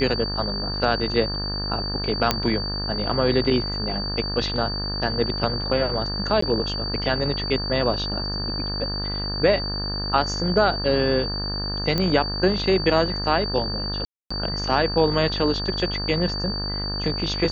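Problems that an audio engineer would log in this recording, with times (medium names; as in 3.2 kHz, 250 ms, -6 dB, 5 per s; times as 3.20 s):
buzz 50 Hz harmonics 36 -30 dBFS
whine 4.6 kHz -28 dBFS
2.31 s: pop -3 dBFS
6.41–6.42 s: dropout 14 ms
11.98 s: pop -10 dBFS
14.05–14.30 s: dropout 255 ms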